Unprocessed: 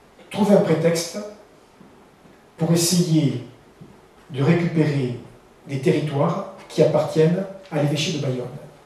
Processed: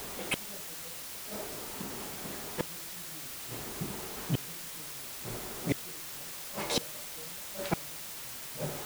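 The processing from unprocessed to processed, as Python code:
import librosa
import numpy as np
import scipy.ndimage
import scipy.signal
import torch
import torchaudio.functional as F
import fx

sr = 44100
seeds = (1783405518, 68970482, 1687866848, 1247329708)

y = fx.gate_flip(x, sr, shuts_db=-22.0, range_db=-42)
y = fx.quant_dither(y, sr, seeds[0], bits=8, dither='triangular')
y = y * librosa.db_to_amplitude(5.5)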